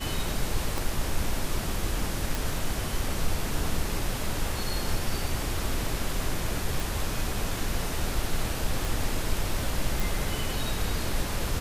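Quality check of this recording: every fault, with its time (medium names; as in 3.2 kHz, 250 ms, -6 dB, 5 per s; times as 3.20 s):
0.78 s: pop
2.35 s: pop
6.80 s: pop
8.85 s: pop
10.00 s: pop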